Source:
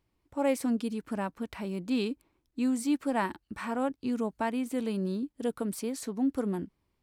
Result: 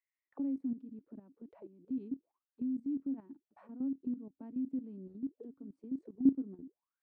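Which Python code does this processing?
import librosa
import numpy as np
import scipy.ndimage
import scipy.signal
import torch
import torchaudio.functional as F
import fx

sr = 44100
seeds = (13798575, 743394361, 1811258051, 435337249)

y = fx.auto_wah(x, sr, base_hz=270.0, top_hz=2000.0, q=15.0, full_db=-31.0, direction='down')
y = fx.level_steps(y, sr, step_db=13)
y = F.gain(torch.from_numpy(y), 5.5).numpy()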